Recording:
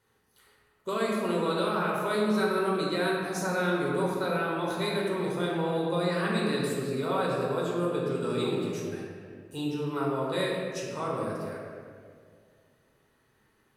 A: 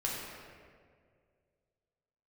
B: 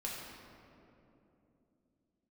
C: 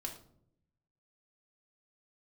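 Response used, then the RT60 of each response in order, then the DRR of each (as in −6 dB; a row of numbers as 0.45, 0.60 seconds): A; 2.0 s, 2.9 s, non-exponential decay; −4.5, −4.5, 1.0 decibels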